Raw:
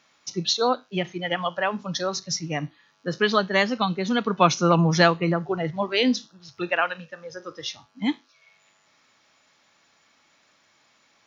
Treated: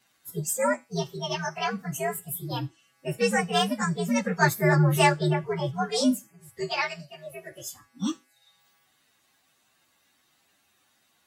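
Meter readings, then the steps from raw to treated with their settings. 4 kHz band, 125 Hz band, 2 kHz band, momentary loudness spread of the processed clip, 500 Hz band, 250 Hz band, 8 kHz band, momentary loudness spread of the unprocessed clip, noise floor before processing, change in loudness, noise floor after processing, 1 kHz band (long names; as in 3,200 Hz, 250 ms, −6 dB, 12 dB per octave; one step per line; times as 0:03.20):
−5.5 dB, +1.0 dB, −2.5 dB, 18 LU, −3.5 dB, −2.5 dB, can't be measured, 15 LU, −63 dBFS, −2.5 dB, −68 dBFS, −3.0 dB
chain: partials spread apart or drawn together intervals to 124%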